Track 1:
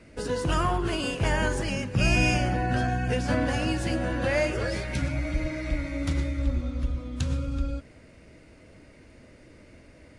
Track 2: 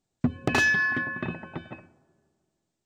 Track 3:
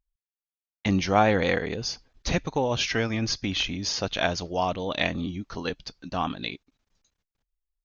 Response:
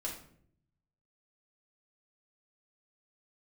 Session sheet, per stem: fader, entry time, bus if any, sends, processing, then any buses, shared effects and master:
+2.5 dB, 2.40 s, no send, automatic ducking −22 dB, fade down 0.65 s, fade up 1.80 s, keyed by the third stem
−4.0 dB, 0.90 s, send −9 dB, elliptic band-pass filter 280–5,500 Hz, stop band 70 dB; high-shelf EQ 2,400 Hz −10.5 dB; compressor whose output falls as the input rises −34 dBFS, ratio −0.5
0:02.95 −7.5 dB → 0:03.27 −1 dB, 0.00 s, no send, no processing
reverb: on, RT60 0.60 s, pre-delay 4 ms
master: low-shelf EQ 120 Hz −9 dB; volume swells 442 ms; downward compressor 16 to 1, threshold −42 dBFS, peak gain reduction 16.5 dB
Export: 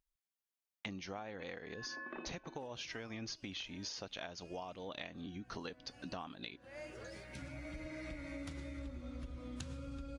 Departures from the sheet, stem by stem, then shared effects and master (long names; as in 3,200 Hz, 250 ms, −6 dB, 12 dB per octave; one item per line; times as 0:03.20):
stem 3 −7.5 dB → −0.5 dB
master: missing volume swells 442 ms